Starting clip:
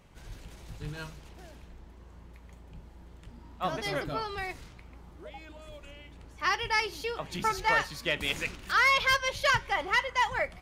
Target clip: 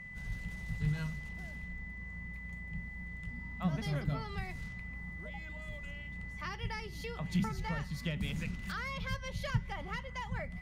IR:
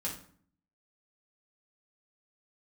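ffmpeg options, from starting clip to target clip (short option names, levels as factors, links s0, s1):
-filter_complex "[0:a]aeval=exprs='val(0)+0.00794*sin(2*PI*2000*n/s)':c=same,acrossover=split=400[s0][s1];[s1]acompressor=threshold=0.0126:ratio=4[s2];[s0][s2]amix=inputs=2:normalize=0,lowshelf=f=250:t=q:w=3:g=7.5,volume=0.668"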